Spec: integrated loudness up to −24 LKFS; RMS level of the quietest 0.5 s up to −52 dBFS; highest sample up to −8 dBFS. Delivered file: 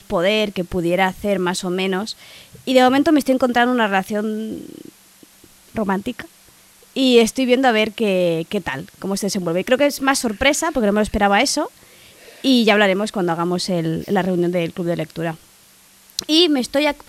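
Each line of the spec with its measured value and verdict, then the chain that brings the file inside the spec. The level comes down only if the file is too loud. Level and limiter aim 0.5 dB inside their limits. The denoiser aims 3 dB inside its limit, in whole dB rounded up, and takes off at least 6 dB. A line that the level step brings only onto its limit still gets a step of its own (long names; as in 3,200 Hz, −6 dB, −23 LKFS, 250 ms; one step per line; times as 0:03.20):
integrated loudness −18.5 LKFS: out of spec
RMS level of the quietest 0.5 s −50 dBFS: out of spec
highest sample −2.0 dBFS: out of spec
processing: level −6 dB
brickwall limiter −8.5 dBFS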